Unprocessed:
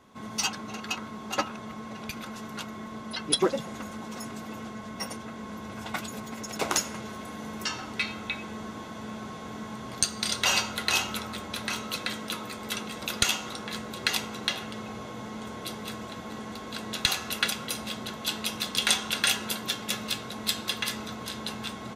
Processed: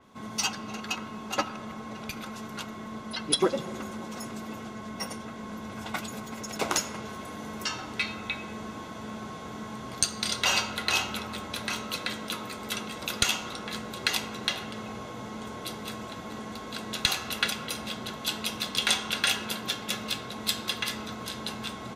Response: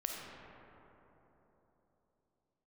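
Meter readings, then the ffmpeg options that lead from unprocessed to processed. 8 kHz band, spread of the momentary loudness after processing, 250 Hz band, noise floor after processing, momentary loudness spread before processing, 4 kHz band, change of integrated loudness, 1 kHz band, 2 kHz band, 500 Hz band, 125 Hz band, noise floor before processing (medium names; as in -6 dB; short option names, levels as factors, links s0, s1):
-1.5 dB, 13 LU, -0.5 dB, -41 dBFS, 14 LU, -0.5 dB, -0.5 dB, 0.0 dB, 0.0 dB, 0.0 dB, 0.0 dB, -41 dBFS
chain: -filter_complex "[0:a]bandreject=f=1800:w=23,asplit=2[s0][s1];[1:a]atrim=start_sample=2205[s2];[s1][s2]afir=irnorm=-1:irlink=0,volume=0.224[s3];[s0][s3]amix=inputs=2:normalize=0,adynamicequalizer=threshold=0.01:dfrequency=5700:dqfactor=0.7:tfrequency=5700:tqfactor=0.7:attack=5:release=100:ratio=0.375:range=2.5:mode=cutabove:tftype=highshelf,volume=0.841"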